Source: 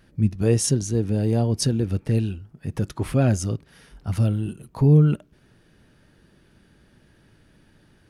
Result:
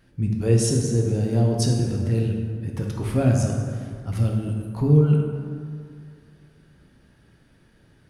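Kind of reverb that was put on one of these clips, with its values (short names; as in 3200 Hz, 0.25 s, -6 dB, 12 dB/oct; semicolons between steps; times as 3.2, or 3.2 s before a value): plate-style reverb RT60 2.2 s, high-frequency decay 0.5×, DRR 0 dB; gain -3.5 dB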